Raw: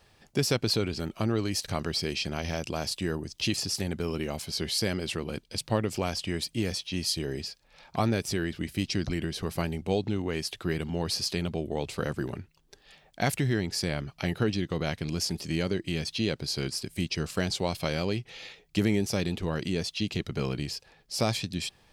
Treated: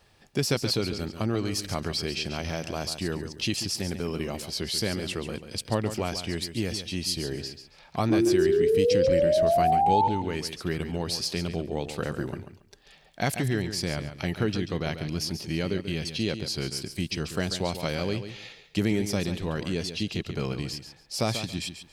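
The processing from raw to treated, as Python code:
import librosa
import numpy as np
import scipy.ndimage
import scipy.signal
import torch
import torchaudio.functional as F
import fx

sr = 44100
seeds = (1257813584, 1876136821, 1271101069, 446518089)

p1 = fx.spec_paint(x, sr, seeds[0], shape='rise', start_s=8.1, length_s=1.98, low_hz=320.0, high_hz=910.0, level_db=-22.0)
p2 = fx.peak_eq(p1, sr, hz=7500.0, db=-7.5, octaves=0.35, at=(14.77, 16.05))
y = p2 + fx.echo_feedback(p2, sr, ms=139, feedback_pct=21, wet_db=-10.0, dry=0)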